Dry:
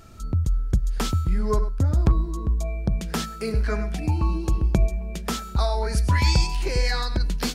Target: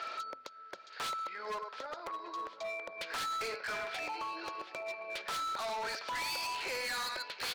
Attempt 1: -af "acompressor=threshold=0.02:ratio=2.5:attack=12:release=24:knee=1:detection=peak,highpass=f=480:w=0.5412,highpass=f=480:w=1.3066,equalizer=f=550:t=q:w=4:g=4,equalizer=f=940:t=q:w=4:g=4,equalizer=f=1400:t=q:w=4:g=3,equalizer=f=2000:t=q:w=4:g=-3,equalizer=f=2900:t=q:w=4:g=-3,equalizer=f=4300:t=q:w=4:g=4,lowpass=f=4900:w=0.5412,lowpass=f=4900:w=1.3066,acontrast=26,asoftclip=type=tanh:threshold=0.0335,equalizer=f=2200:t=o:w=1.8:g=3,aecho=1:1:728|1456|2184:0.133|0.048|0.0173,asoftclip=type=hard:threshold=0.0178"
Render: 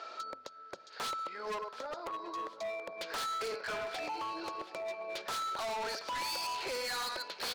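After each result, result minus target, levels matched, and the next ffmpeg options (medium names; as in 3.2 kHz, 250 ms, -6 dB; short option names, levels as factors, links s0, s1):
compression: peak gain reduction -5.5 dB; 2 kHz band -2.5 dB
-af "acompressor=threshold=0.00668:ratio=2.5:attack=12:release=24:knee=1:detection=peak,highpass=f=480:w=0.5412,highpass=f=480:w=1.3066,equalizer=f=550:t=q:w=4:g=4,equalizer=f=940:t=q:w=4:g=4,equalizer=f=1400:t=q:w=4:g=3,equalizer=f=2000:t=q:w=4:g=-3,equalizer=f=2900:t=q:w=4:g=-3,equalizer=f=4300:t=q:w=4:g=4,lowpass=f=4900:w=0.5412,lowpass=f=4900:w=1.3066,acontrast=26,asoftclip=type=tanh:threshold=0.0335,equalizer=f=2200:t=o:w=1.8:g=3,aecho=1:1:728|1456|2184:0.133|0.048|0.0173,asoftclip=type=hard:threshold=0.0178"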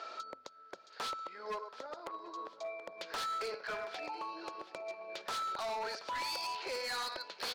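2 kHz band -2.5 dB
-af "acompressor=threshold=0.00668:ratio=2.5:attack=12:release=24:knee=1:detection=peak,highpass=f=480:w=0.5412,highpass=f=480:w=1.3066,equalizer=f=550:t=q:w=4:g=4,equalizer=f=940:t=q:w=4:g=4,equalizer=f=1400:t=q:w=4:g=3,equalizer=f=2000:t=q:w=4:g=-3,equalizer=f=2900:t=q:w=4:g=-3,equalizer=f=4300:t=q:w=4:g=4,lowpass=f=4900:w=0.5412,lowpass=f=4900:w=1.3066,acontrast=26,asoftclip=type=tanh:threshold=0.0335,equalizer=f=2200:t=o:w=1.8:g=12.5,aecho=1:1:728|1456|2184:0.133|0.048|0.0173,asoftclip=type=hard:threshold=0.0178"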